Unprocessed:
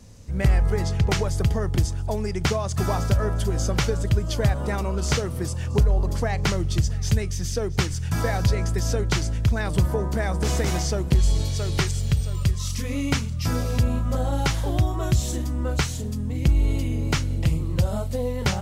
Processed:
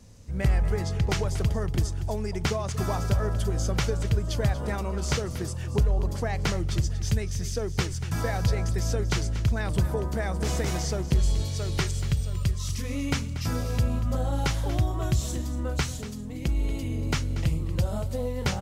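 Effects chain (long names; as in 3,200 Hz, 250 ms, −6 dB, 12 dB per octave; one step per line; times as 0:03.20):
0:15.96–0:16.83: parametric band 94 Hz −9.5 dB 1.1 octaves
single-tap delay 236 ms −14 dB
level −4 dB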